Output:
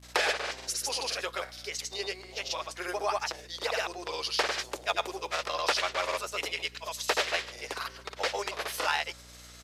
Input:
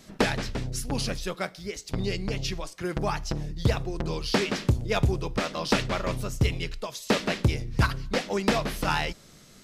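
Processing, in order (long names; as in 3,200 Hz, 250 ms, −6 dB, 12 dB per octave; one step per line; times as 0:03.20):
Bessel high-pass filter 690 Hz, order 8
in parallel at +0.5 dB: downward compressor, threshold −38 dBFS, peak gain reduction 15 dB
on the sum: granular cloud 100 ms, grains 20 per second, pitch spread up and down by 0 semitones
surface crackle 520 per second −52 dBFS
downsampling to 32,000 Hz
mains hum 60 Hz, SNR 21 dB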